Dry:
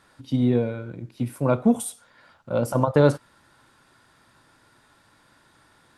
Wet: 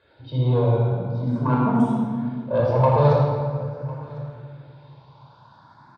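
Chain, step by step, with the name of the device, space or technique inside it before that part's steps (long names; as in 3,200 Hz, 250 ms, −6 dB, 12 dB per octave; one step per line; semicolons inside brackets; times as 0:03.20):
0:00.88–0:02.59: high-pass filter 94 Hz 24 dB per octave
barber-pole phaser into a guitar amplifier (frequency shifter mixed with the dry sound +0.45 Hz; soft clipping −21 dBFS, distortion −8 dB; loudspeaker in its box 77–4,300 Hz, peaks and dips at 920 Hz +10 dB, 1,900 Hz −9 dB, 2,800 Hz −6 dB)
single-tap delay 1,052 ms −21 dB
rectangular room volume 3,300 cubic metres, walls mixed, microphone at 5.2 metres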